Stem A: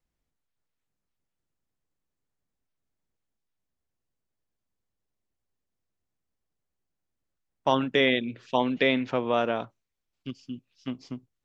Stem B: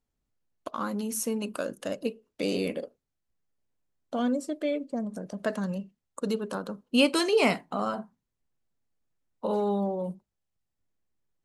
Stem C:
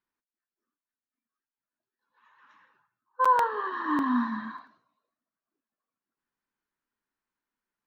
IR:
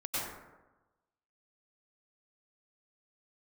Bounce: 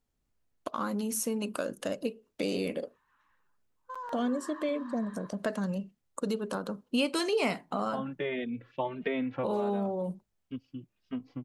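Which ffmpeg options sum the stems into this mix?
-filter_complex "[0:a]lowpass=2k,asplit=2[a][b];[b]adelay=2.9,afreqshift=1.5[c];[a][c]amix=inputs=2:normalize=1,adelay=250,volume=0dB[d];[1:a]volume=2dB,asplit=2[e][f];[2:a]alimiter=limit=-23.5dB:level=0:latency=1,aeval=exprs='0.0668*(cos(1*acos(clip(val(0)/0.0668,-1,1)))-cos(1*PI/2))+0.00119*(cos(7*acos(clip(val(0)/0.0668,-1,1)))-cos(7*PI/2))':c=same,adelay=700,volume=-10.5dB[g];[f]apad=whole_len=515886[h];[d][h]sidechaincompress=threshold=-27dB:ratio=8:attack=6.3:release=1210[i];[i][e][g]amix=inputs=3:normalize=0,acompressor=threshold=-31dB:ratio=2"

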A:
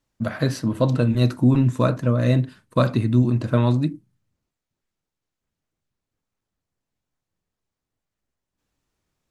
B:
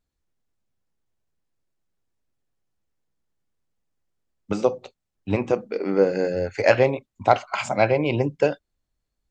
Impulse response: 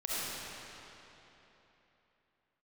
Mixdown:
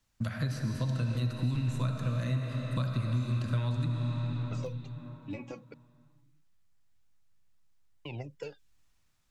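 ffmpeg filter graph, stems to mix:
-filter_complex "[0:a]equalizer=f=390:w=0.65:g=-12,volume=0.5dB,asplit=2[a][b];[b]volume=-7.5dB[c];[1:a]aphaser=in_gain=1:out_gain=1:delay=3.6:decay=0.73:speed=0.27:type=sinusoidal,volume=-14.5dB,asplit=3[d][e][f];[d]atrim=end=5.74,asetpts=PTS-STARTPTS,afade=t=out:st=5.736:d=0.004:c=hsin[g];[e]atrim=start=5.74:end=8.05,asetpts=PTS-STARTPTS,volume=0[h];[f]atrim=start=8.05,asetpts=PTS-STARTPTS,afade=t=in:d=0.004:c=hsin[i];[g][h][i]concat=n=3:v=0:a=1[j];[2:a]atrim=start_sample=2205[k];[c][k]afir=irnorm=-1:irlink=0[l];[a][j][l]amix=inputs=3:normalize=0,acrossover=split=220|2100[m][n][o];[m]acompressor=threshold=-31dB:ratio=4[p];[n]acompressor=threshold=-43dB:ratio=4[q];[o]acompressor=threshold=-50dB:ratio=4[r];[p][q][r]amix=inputs=3:normalize=0"

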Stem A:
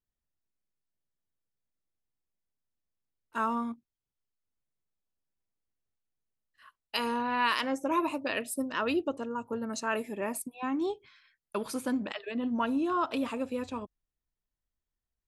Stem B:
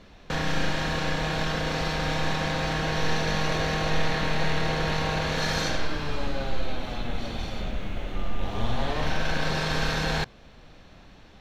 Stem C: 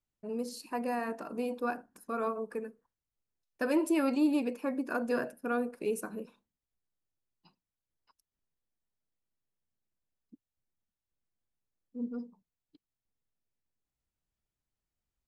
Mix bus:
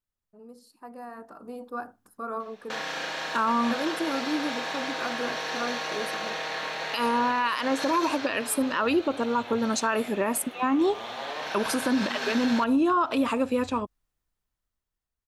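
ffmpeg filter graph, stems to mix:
-filter_complex "[0:a]equalizer=f=1.2k:w=1.5:g=4,volume=-1.5dB[a];[1:a]highpass=510,adelay=2400,volume=-12.5dB[b];[2:a]equalizer=f=100:t=o:w=0.33:g=12,equalizer=f=800:t=o:w=0.33:g=5,equalizer=f=1.25k:t=o:w=0.33:g=8,equalizer=f=2.5k:t=o:w=0.33:g=-10,equalizer=f=6.3k:t=o:w=0.33:g=-5,adelay=100,volume=-13dB[c];[a][b][c]amix=inputs=3:normalize=0,dynaudnorm=f=260:g=11:m=10.5dB,alimiter=limit=-16dB:level=0:latency=1:release=86"

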